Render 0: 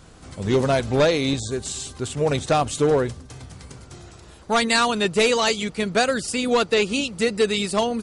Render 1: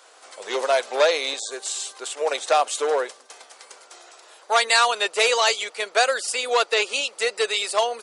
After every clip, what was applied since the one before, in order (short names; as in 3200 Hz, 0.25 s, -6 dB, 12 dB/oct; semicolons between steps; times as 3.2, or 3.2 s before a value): inverse Chebyshev high-pass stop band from 150 Hz, stop band 60 dB; gain +2 dB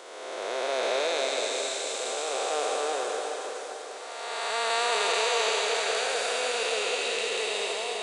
time blur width 0.712 s; on a send: diffused feedback echo 0.45 s, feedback 45%, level -5 dB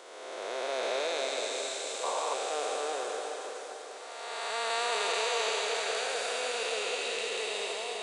painted sound noise, 2.03–2.35, 440–1200 Hz -29 dBFS; gain -4.5 dB